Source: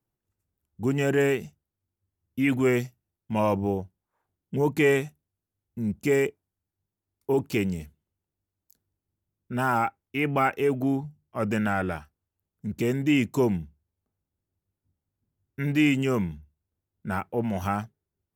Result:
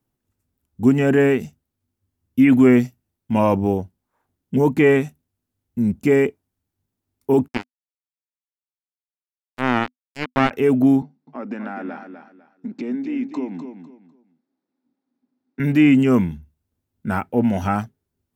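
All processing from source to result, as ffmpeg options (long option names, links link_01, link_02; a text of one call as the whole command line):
ffmpeg -i in.wav -filter_complex "[0:a]asettb=1/sr,asplit=3[link_01][link_02][link_03];[link_01]atrim=end=7.484[link_04];[link_02]atrim=start=7.48:end=10.51,asetpts=PTS-STARTPTS,afade=type=in:duration=0.004:curve=qsin,afade=type=out:start_time=3.026:duration=0.004:curve=qsin,acrossover=split=6200[link_05][link_06];[link_06]acompressor=threshold=-54dB:ratio=4:attack=1:release=60[link_07];[link_05][link_07]amix=inputs=2:normalize=0,highpass=140,acrusher=bits=2:mix=0:aa=0.5[link_08];[link_03]atrim=start=10.506[link_09];[link_04][link_08]acrossfade=duration=0.004:curve1=hsin:curve2=qsin[link_10];[link_10][link_09]acrossfade=duration=0.004:curve1=qsin:curve2=hsin,asettb=1/sr,asplit=3[link_11][link_12][link_13];[link_11]atrim=end=11.024[link_14];[link_12]atrim=start=11.02:end=15.6,asetpts=PTS-STARTPTS,afade=type=in:duration=0.004:curve=qsin,afade=type=out:start_time=4.576:duration=0.004:curve=qsin,highpass=frequency=230:width=0.5412,highpass=frequency=230:width=1.3066,equalizer=frequency=270:width_type=q:width=4:gain=7,equalizer=frequency=810:width_type=q:width=4:gain=4,equalizer=frequency=3000:width_type=q:width=4:gain=-8,lowpass=frequency=4600:width=0.5412,lowpass=frequency=4600:width=1.3066,acompressor=threshold=-38dB:ratio=3:attack=3.2:release=140:knee=1:detection=peak,aecho=1:1:250|500|750:0.376|0.0977|0.0254,atrim=end_sample=201978[link_15];[link_13]atrim=start=15.596[link_16];[link_14][link_15]acrossfade=duration=0.004:curve1=hsin:curve2=qsin[link_17];[link_17][link_16]acrossfade=duration=0.004:curve1=qsin:curve2=hsin,asettb=1/sr,asplit=3[link_18][link_19][link_20];[link_18]atrim=end=17.214[link_21];[link_19]atrim=start=17.21:end=17.76,asetpts=PTS-STARTPTS,afade=type=in:duration=0.004:curve=qsin,afade=type=out:start_time=0.546:duration=0.004:curve=qsin,acrossover=split=7700[link_22][link_23];[link_23]acompressor=threshold=-56dB:ratio=4:attack=1:release=60[link_24];[link_22][link_24]amix=inputs=2:normalize=0,asuperstop=centerf=1100:order=4:qfactor=6.5[link_25];[link_20]atrim=start=17.756[link_26];[link_21][link_25]acrossfade=duration=0.004:curve1=hsin:curve2=qsin[link_27];[link_27][link_26]acrossfade=duration=0.004:curve1=qsin:curve2=hsin,equalizer=frequency=250:width_type=o:width=0.23:gain=10.5,acrossover=split=2600[link_28][link_29];[link_29]acompressor=threshold=-46dB:ratio=4:attack=1:release=60[link_30];[link_28][link_30]amix=inputs=2:normalize=0,volume=6dB" out.wav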